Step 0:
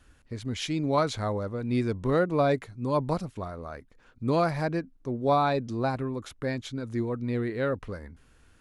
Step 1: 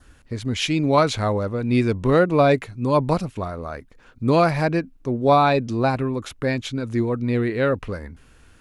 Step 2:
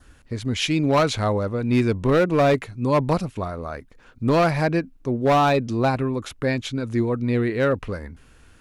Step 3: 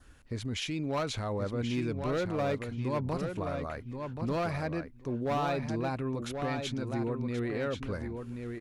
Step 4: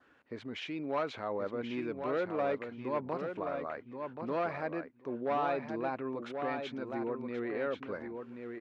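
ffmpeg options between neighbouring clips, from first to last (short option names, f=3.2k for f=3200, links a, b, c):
-af "adynamicequalizer=threshold=0.00251:dfrequency=2600:dqfactor=3.4:tfrequency=2600:tqfactor=3.4:attack=5:release=100:ratio=0.375:range=3:mode=boostabove:tftype=bell,volume=7.5dB"
-af "asoftclip=type=hard:threshold=-13dB"
-filter_complex "[0:a]alimiter=limit=-20.5dB:level=0:latency=1:release=71,asplit=2[a][b];[b]adelay=1080,lowpass=f=4.9k:p=1,volume=-6dB,asplit=2[c][d];[d]adelay=1080,lowpass=f=4.9k:p=1,volume=0.16,asplit=2[e][f];[f]adelay=1080,lowpass=f=4.9k:p=1,volume=0.16[g];[c][e][g]amix=inputs=3:normalize=0[h];[a][h]amix=inputs=2:normalize=0,volume=-6dB"
-af "highpass=310,lowpass=2.3k"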